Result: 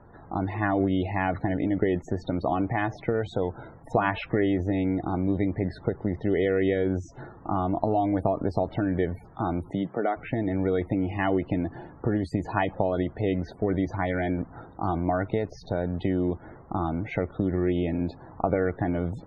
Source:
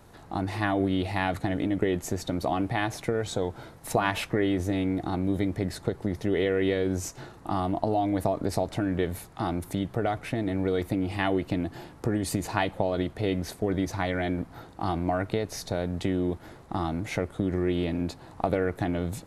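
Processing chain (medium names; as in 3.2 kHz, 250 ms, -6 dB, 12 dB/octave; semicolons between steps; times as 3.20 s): 9.71–10.16 s: high-pass 100 Hz -> 270 Hz 24 dB/octave; loudest bins only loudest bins 64; low-pass 2.6 kHz 12 dB/octave; trim +1.5 dB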